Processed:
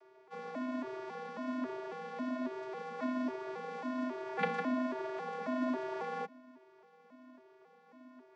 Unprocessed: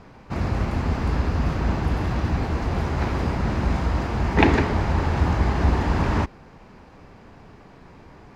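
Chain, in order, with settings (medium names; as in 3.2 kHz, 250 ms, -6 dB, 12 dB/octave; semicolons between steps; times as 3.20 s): vocoder on a broken chord minor triad, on C4, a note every 273 ms; Chebyshev high-pass 390 Hz, order 6; frequency shift -140 Hz; trim -6 dB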